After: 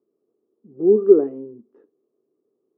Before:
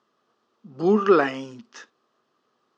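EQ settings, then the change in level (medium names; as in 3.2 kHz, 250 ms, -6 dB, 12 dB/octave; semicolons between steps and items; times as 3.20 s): resonant low-pass 410 Hz, resonance Q 4.9; peaking EQ 300 Hz +6.5 dB 0.24 oct; -7.5 dB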